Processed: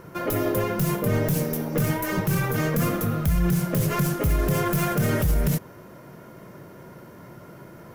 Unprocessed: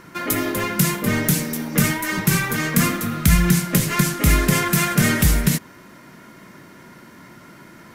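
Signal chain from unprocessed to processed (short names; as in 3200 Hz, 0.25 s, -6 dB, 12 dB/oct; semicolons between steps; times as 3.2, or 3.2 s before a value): tracing distortion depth 0.045 ms; ten-band EQ 125 Hz +4 dB, 250 Hz -8 dB, 500 Hz +6 dB, 1000 Hz -3 dB, 2000 Hz -9 dB, 4000 Hz -8 dB, 8000 Hz -9 dB; limiter -16.5 dBFS, peak gain reduction 11 dB; gain +2.5 dB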